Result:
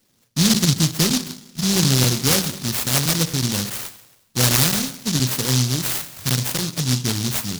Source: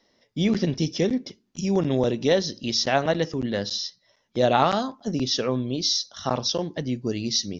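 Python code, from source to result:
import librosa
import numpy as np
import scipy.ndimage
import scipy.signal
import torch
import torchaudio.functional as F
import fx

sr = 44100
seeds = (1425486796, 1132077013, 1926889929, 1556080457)

y = fx.peak_eq(x, sr, hz=130.0, db=11.5, octaves=1.2)
y = fx.rev_schroeder(y, sr, rt60_s=0.97, comb_ms=32, drr_db=11.0)
y = fx.noise_mod_delay(y, sr, seeds[0], noise_hz=4800.0, depth_ms=0.46)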